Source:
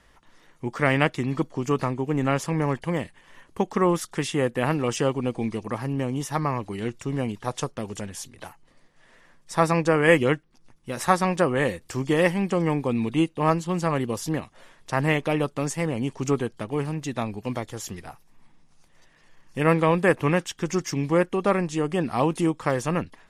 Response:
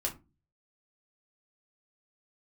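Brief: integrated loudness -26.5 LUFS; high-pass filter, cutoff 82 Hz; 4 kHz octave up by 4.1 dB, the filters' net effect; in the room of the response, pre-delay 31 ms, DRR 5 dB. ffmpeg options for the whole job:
-filter_complex "[0:a]highpass=82,equalizer=f=4000:t=o:g=6,asplit=2[s0][s1];[1:a]atrim=start_sample=2205,adelay=31[s2];[s1][s2]afir=irnorm=-1:irlink=0,volume=0.376[s3];[s0][s3]amix=inputs=2:normalize=0,volume=0.708"

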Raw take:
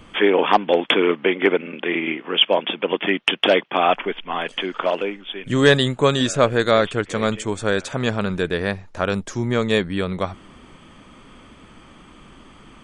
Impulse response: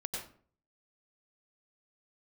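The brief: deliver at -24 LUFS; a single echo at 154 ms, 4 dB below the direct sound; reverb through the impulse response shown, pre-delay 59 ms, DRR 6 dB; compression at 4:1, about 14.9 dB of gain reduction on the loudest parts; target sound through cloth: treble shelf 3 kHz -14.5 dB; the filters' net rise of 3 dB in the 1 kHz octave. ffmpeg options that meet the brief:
-filter_complex "[0:a]equalizer=f=1000:t=o:g=6,acompressor=threshold=0.0631:ratio=4,aecho=1:1:154:0.631,asplit=2[s0][s1];[1:a]atrim=start_sample=2205,adelay=59[s2];[s1][s2]afir=irnorm=-1:irlink=0,volume=0.422[s3];[s0][s3]amix=inputs=2:normalize=0,highshelf=f=3000:g=-14.5,volume=1.41"

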